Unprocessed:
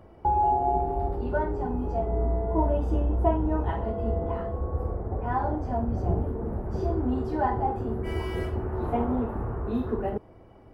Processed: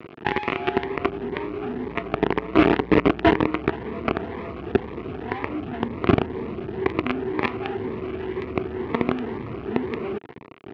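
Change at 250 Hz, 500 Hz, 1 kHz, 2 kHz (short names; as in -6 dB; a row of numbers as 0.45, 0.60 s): +6.0, +4.5, -1.0, +14.0 dB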